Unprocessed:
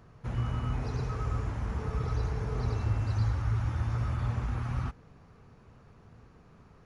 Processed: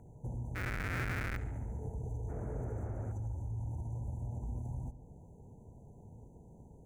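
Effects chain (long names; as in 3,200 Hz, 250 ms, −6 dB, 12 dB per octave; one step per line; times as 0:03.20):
lower of the sound and its delayed copy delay 0.39 ms
brickwall limiter −25 dBFS, peak gain reduction 6 dB
linear-phase brick-wall band-stop 1,000–6,000 Hz
0:00.55–0:01.37: comparator with hysteresis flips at −38 dBFS
downward compressor 2.5 to 1, threshold −42 dBFS, peak gain reduction 9.5 dB
0:02.28–0:03.11: noise in a band 49–650 Hz −49 dBFS
flat-topped bell 1,800 Hz +14.5 dB 1.1 octaves
feedback echo with a low-pass in the loop 71 ms, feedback 69%, low-pass 3,400 Hz, level −14 dB
level +1.5 dB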